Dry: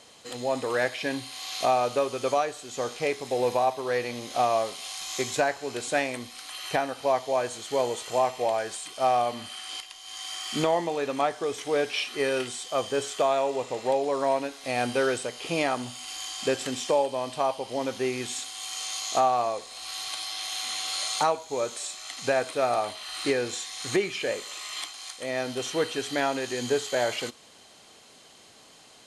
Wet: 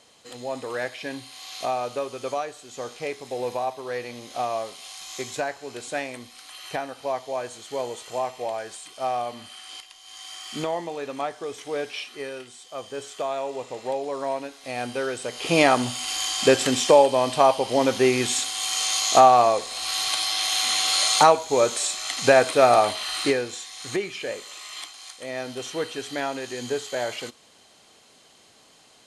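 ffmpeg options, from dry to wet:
-af "volume=6.68,afade=t=out:st=11.88:d=0.57:silence=0.421697,afade=t=in:st=12.45:d=1.13:silence=0.398107,afade=t=in:st=15.16:d=0.46:silence=0.251189,afade=t=out:st=23.01:d=0.46:silence=0.281838"

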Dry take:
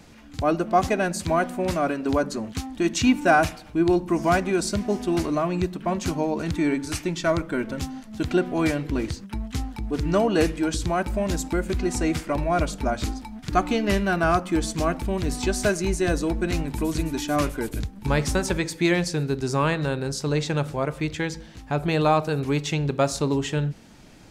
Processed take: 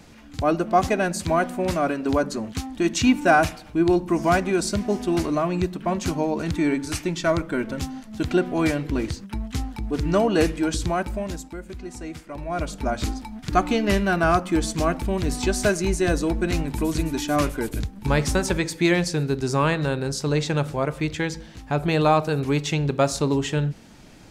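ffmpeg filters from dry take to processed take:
-af "volume=4.73,afade=t=out:st=10.86:d=0.64:silence=0.251189,afade=t=in:st=12.31:d=0.76:silence=0.237137"

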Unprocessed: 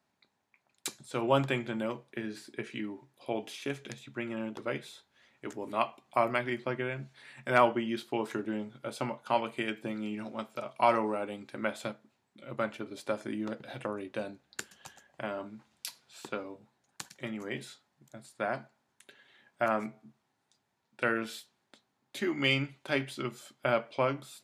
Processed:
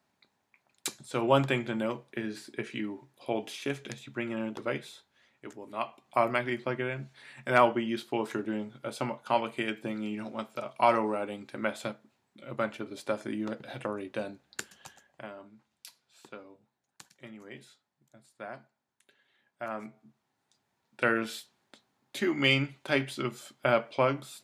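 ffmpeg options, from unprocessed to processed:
-af "volume=14.1,afade=t=out:st=4.64:d=1.04:silence=0.334965,afade=t=in:st=5.68:d=0.52:silence=0.375837,afade=t=out:st=14.75:d=0.6:silence=0.298538,afade=t=in:st=19.62:d=1.42:silence=0.251189"

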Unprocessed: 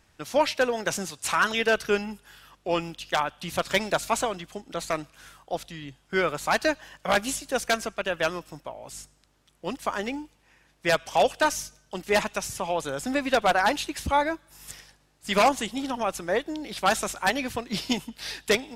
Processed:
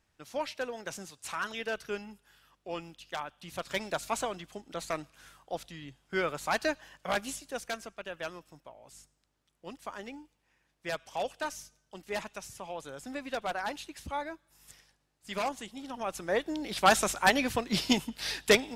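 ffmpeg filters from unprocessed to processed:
-af "volume=2.24,afade=t=in:st=3.43:d=0.9:silence=0.501187,afade=t=out:st=6.78:d=0.99:silence=0.473151,afade=t=in:st=15.84:d=0.99:silence=0.223872"

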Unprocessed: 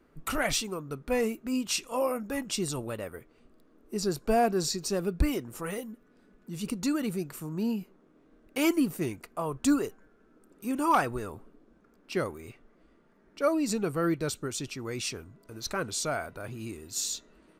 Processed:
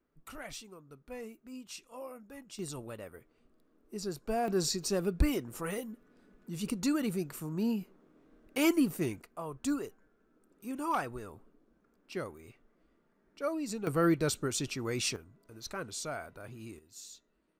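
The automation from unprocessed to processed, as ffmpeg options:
-af "asetnsamples=n=441:p=0,asendcmd='2.59 volume volume -8dB;4.48 volume volume -1.5dB;9.22 volume volume -8dB;13.87 volume volume 1dB;15.16 volume volume -7.5dB;16.79 volume volume -17dB',volume=0.158"

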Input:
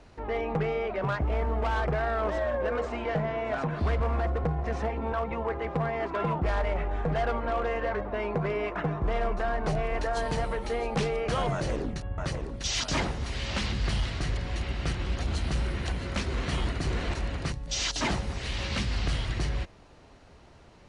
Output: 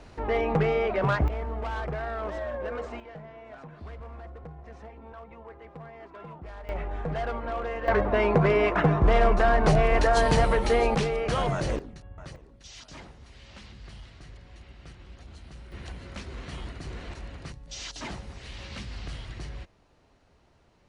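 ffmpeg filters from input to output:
-af "asetnsamples=n=441:p=0,asendcmd='1.28 volume volume -4.5dB;3 volume volume -15dB;6.69 volume volume -3dB;7.88 volume volume 8dB;10.95 volume volume 1.5dB;11.79 volume volume -11dB;12.36 volume volume -17dB;15.72 volume volume -9dB',volume=1.68"

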